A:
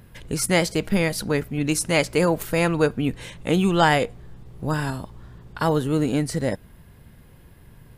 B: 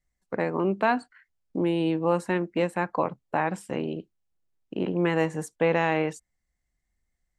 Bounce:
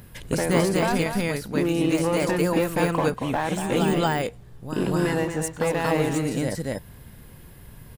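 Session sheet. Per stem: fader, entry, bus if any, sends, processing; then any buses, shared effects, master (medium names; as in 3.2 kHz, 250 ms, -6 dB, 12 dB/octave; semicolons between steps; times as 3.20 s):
+2.5 dB, 0.00 s, no send, echo send -7.5 dB, de-esser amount 65%; auto duck -13 dB, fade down 1.65 s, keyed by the second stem
-1.0 dB, 0.00 s, no send, echo send -8 dB, compression, threshold -26 dBFS, peak gain reduction 9 dB; waveshaping leveller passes 2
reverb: none
echo: delay 234 ms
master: treble shelf 5.1 kHz +7 dB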